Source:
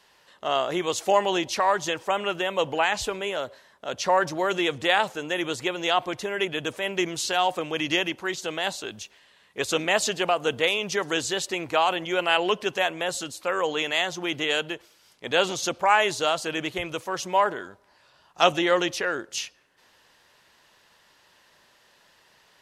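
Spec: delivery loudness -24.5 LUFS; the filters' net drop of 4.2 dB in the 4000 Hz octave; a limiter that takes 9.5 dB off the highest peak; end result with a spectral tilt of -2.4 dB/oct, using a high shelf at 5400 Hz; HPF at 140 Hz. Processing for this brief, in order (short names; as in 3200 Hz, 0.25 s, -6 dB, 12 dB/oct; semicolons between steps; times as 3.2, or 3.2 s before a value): HPF 140 Hz; bell 4000 Hz -9 dB; high shelf 5400 Hz +7.5 dB; gain +3.5 dB; limiter -11.5 dBFS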